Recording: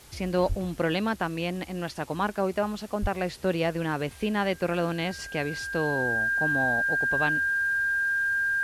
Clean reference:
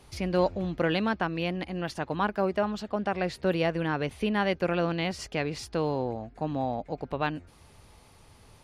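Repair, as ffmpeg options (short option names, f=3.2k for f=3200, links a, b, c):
-filter_complex "[0:a]adeclick=t=4,bandreject=f=1.6k:w=30,asplit=3[a][b][c];[a]afade=t=out:st=0.48:d=0.02[d];[b]highpass=f=140:w=0.5412,highpass=f=140:w=1.3066,afade=t=in:st=0.48:d=0.02,afade=t=out:st=0.6:d=0.02[e];[c]afade=t=in:st=0.6:d=0.02[f];[d][e][f]amix=inputs=3:normalize=0,asplit=3[g][h][i];[g]afade=t=out:st=3.01:d=0.02[j];[h]highpass=f=140:w=0.5412,highpass=f=140:w=1.3066,afade=t=in:st=3.01:d=0.02,afade=t=out:st=3.13:d=0.02[k];[i]afade=t=in:st=3.13:d=0.02[l];[j][k][l]amix=inputs=3:normalize=0,afwtdn=0.0025"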